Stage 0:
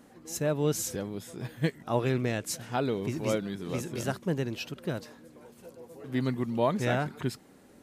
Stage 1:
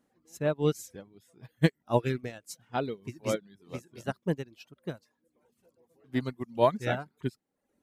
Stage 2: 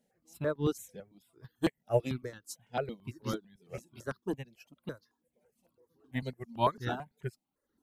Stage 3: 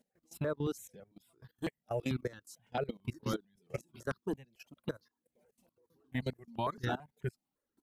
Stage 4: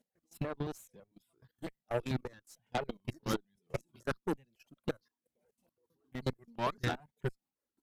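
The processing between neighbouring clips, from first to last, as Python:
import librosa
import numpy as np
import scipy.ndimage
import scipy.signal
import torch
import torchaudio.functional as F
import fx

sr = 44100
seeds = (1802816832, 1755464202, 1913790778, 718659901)

y1 = fx.dereverb_blind(x, sr, rt60_s=0.81)
y1 = fx.upward_expand(y1, sr, threshold_db=-38.0, expansion=2.5)
y1 = F.gain(torch.from_numpy(y1), 6.0).numpy()
y2 = fx.phaser_held(y1, sr, hz=9.0, low_hz=310.0, high_hz=2400.0)
y3 = fx.level_steps(y2, sr, step_db=19)
y3 = F.gain(torch.from_numpy(y3), 5.5).numpy()
y4 = y3 * (1.0 - 0.5 / 2.0 + 0.5 / 2.0 * np.cos(2.0 * np.pi * 5.1 * (np.arange(len(y3)) / sr)))
y4 = fx.cheby_harmonics(y4, sr, harmonics=(3, 7, 8), levels_db=(-25, -26, -22), full_scale_db=-21.5)
y4 = F.gain(torch.from_numpy(y4), 3.5).numpy()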